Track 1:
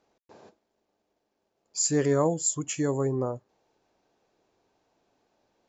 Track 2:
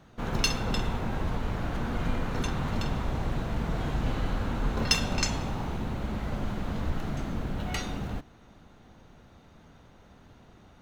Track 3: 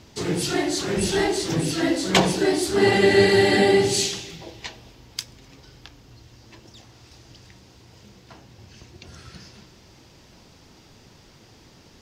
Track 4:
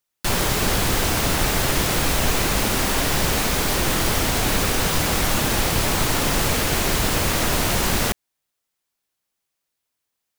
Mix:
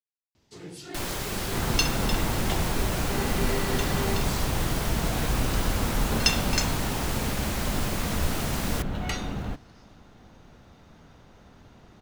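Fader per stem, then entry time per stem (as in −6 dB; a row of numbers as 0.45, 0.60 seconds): muted, +2.0 dB, −17.0 dB, −11.0 dB; muted, 1.35 s, 0.35 s, 0.70 s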